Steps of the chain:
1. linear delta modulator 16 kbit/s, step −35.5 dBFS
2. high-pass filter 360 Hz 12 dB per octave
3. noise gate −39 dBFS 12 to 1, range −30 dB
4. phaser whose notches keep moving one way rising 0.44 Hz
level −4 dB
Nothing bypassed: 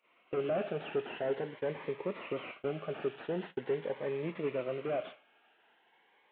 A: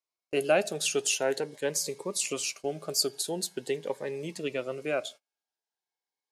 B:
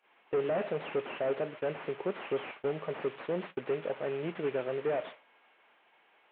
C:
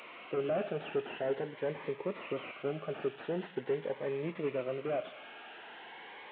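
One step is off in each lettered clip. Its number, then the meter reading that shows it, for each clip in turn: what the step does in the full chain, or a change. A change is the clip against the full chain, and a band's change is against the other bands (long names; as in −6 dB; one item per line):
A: 1, 4 kHz band +14.0 dB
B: 4, 125 Hz band −2.0 dB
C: 3, change in momentary loudness spread +9 LU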